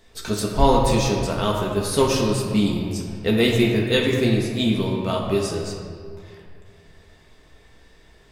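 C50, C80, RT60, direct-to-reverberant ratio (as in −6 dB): 2.5 dB, 3.5 dB, 2.2 s, −2.0 dB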